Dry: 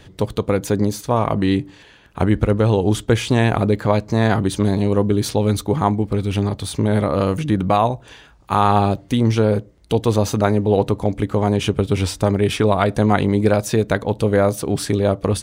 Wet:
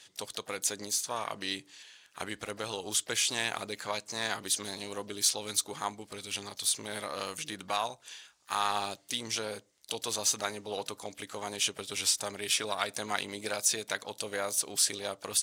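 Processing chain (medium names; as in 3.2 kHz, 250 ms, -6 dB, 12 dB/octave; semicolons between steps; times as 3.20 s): band-pass filter 7.4 kHz, Q 1; harmony voices +4 st -17 dB, +7 st -18 dB; trim +4 dB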